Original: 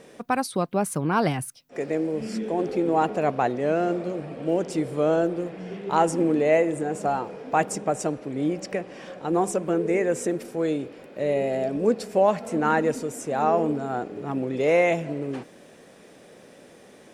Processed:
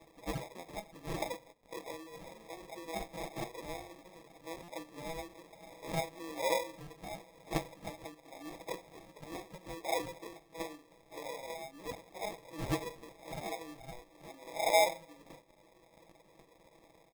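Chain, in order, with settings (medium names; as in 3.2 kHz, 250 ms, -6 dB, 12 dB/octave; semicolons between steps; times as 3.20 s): delay that grows with frequency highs early, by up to 171 ms; two resonant band-passes 2.8 kHz, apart 0.86 oct; crackle 190 per s -51 dBFS; reverb removal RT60 0.78 s; comb 6.1 ms, depth 89%; FDN reverb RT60 0.49 s, low-frequency decay 1×, high-frequency decay 0.9×, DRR 10.5 dB; sample-and-hold 30×; buffer glitch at 4.63 s, samples 256, times 8; trim +1.5 dB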